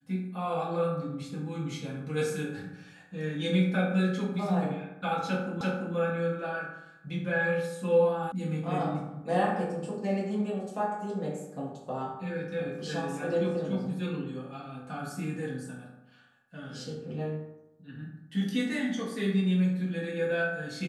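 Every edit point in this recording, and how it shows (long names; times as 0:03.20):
0:05.61: the same again, the last 0.34 s
0:08.32: cut off before it has died away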